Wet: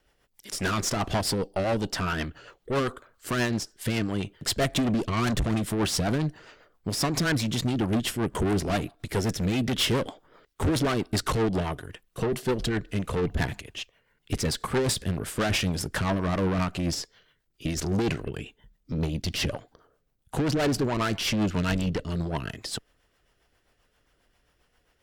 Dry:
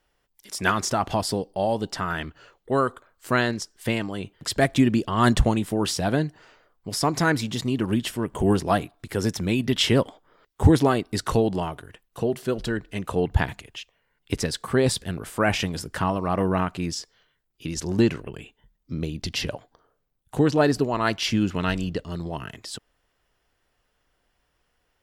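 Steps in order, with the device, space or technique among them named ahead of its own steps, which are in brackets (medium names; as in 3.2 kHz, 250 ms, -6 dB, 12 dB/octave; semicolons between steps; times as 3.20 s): overdriven rotary cabinet (valve stage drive 28 dB, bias 0.45; rotary cabinet horn 7.5 Hz); trim +7.5 dB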